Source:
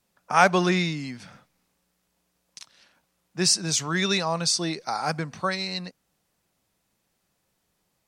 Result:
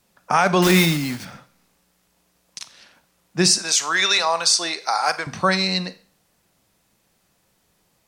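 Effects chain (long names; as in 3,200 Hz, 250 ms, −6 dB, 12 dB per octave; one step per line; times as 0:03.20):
0:00.62–0:01.25: one scale factor per block 3 bits
0:03.58–0:05.27: high-pass filter 690 Hz 12 dB per octave
brickwall limiter −14.5 dBFS, peak gain reduction 11.5 dB
four-comb reverb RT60 0.42 s, combs from 32 ms, DRR 13.5 dB
level +8.5 dB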